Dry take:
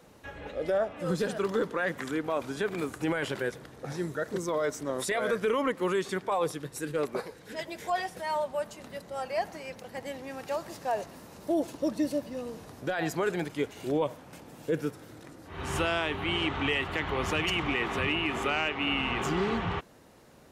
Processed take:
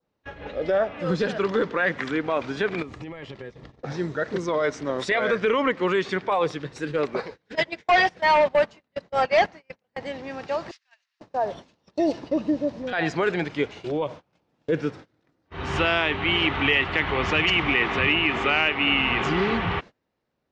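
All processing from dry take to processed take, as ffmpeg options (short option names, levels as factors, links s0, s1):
-filter_complex "[0:a]asettb=1/sr,asplit=3[s0][s1][s2];[s0]atrim=end=2.824[s3];[s1]atrim=start=2.82:end=3.82,asetpts=PTS-STARTPTS,afade=t=in:d=0.004:c=qsin,afade=t=out:st=0.996:d=0.004:c=qsin,asuperstop=centerf=1500:order=4:qfactor=6.4,lowshelf=f=130:g=11.5,acompressor=threshold=0.0126:ratio=12:attack=3.2:release=140:knee=1:detection=peak[s4];[s2]atrim=start=3.816[s5];[s3][s4]acrossfade=d=0.004:c1=hsin:c2=qsin[s6];[s6][s5]acrossfade=d=0.004:c1=qsin:c2=hsin,asettb=1/sr,asplit=3[s7][s8][s9];[s7]atrim=end=7.554[s10];[s8]atrim=start=7.55:end=9.97,asetpts=PTS-STARTPTS,afade=t=in:d=0.004:c=qsin,afade=t=out:st=2.416:d=0.004:c=qsin,agate=range=0.112:threshold=0.0141:ratio=16:release=100:detection=peak,aeval=exprs='0.112*sin(PI/2*1.78*val(0)/0.112)':c=same[s11];[s9]atrim=start=9.966[s12];[s10][s11]acrossfade=d=0.004:c1=hsin:c2=qsin[s13];[s13][s12]acrossfade=d=0.004:c1=qsin:c2=hsin,asettb=1/sr,asplit=3[s14][s15][s16];[s14]atrim=end=10.714[s17];[s15]atrim=start=10.71:end=12.93,asetpts=PTS-STARTPTS,afade=t=in:d=0.004:c=qsin,afade=t=out:st=2.216:d=0.004:c=qsin,highshelf=f=12000:g=-3.5,acrossover=split=1600[s18][s19];[s18]adelay=490[s20];[s20][s19]amix=inputs=2:normalize=0,atrim=end_sample=97902[s21];[s16]atrim=start=12.926[s22];[s17][s21]acrossfade=d=0.004:c1=hsin:c2=qsin[s23];[s23][s22]acrossfade=d=0.004:c1=qsin:c2=hsin,asettb=1/sr,asplit=3[s24][s25][s26];[s24]atrim=end=13.644[s27];[s25]atrim=start=13.64:end=14.5,asetpts=PTS-STARTPTS,afade=t=in:d=0.004:c=qsin,afade=t=out:st=0.856:d=0.004:c=qsin,acompressor=threshold=0.0251:ratio=1.5:attack=3.2:release=140:knee=1:detection=peak,equalizer=f=1800:t=o:w=0.4:g=-4,bandreject=f=260:w=7.1[s28];[s26]atrim=start=14.496[s29];[s27][s28]acrossfade=d=0.004:c1=hsin:c2=qsin[s30];[s30][s29]acrossfade=d=0.004:c1=qsin:c2=hsin,agate=range=0.0447:threshold=0.00708:ratio=16:detection=peak,lowpass=f=5400:w=0.5412,lowpass=f=5400:w=1.3066,adynamicequalizer=threshold=0.00794:dfrequency=2200:dqfactor=1.4:tfrequency=2200:tqfactor=1.4:attack=5:release=100:ratio=0.375:range=2.5:mode=boostabove:tftype=bell,volume=1.78"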